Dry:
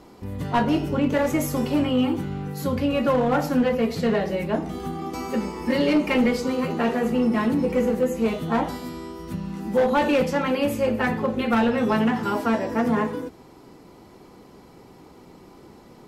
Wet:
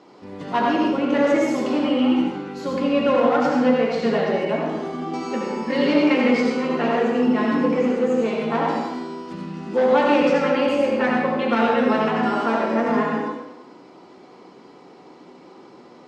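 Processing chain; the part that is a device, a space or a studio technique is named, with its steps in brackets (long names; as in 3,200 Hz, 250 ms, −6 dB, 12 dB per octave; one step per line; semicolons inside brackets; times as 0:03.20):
supermarket ceiling speaker (band-pass filter 250–6,400 Hz; convolution reverb RT60 1.0 s, pre-delay 67 ms, DRR −1.5 dB)
low-pass filter 7,200 Hz 12 dB per octave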